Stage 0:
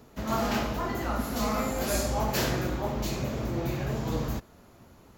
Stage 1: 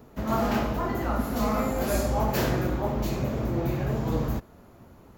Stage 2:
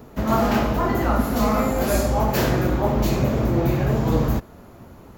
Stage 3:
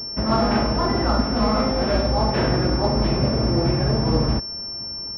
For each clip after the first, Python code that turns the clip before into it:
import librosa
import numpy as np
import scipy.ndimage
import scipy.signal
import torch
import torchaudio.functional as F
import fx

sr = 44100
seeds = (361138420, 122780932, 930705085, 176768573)

y1 = fx.peak_eq(x, sr, hz=5700.0, db=-8.0, octaves=2.9)
y1 = y1 * librosa.db_to_amplitude(3.5)
y2 = fx.rider(y1, sr, range_db=10, speed_s=0.5)
y2 = y2 * librosa.db_to_amplitude(6.5)
y3 = fx.pwm(y2, sr, carrier_hz=5400.0)